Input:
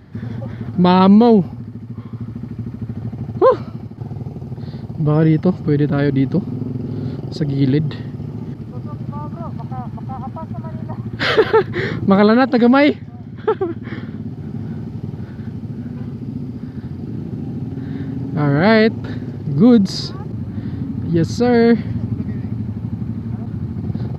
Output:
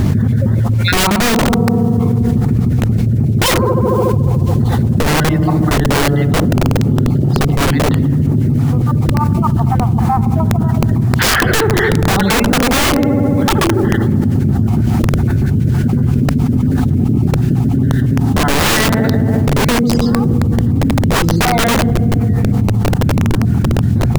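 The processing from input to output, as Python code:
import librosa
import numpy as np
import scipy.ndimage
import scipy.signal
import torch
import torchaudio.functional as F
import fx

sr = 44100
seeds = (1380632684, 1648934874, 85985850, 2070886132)

p1 = fx.spec_dropout(x, sr, seeds[0], share_pct=38)
p2 = fx.rider(p1, sr, range_db=4, speed_s=2.0)
p3 = p1 + (p2 * 10.0 ** (-1.0 / 20.0))
p4 = fx.peak_eq(p3, sr, hz=5600.0, db=-11.0, octaves=1.3)
p5 = p4 + fx.echo_filtered(p4, sr, ms=72, feedback_pct=84, hz=3300.0, wet_db=-15.0, dry=0)
p6 = fx.quant_dither(p5, sr, seeds[1], bits=8, dither='none')
p7 = (np.mod(10.0 ** (9.0 / 20.0) * p6 + 1.0, 2.0) - 1.0) / 10.0 ** (9.0 / 20.0)
p8 = fx.low_shelf(p7, sr, hz=240.0, db=10.0)
p9 = fx.hum_notches(p8, sr, base_hz=60, count=3)
p10 = fx.env_flatten(p9, sr, amount_pct=100)
y = p10 * 10.0 ** (-6.5 / 20.0)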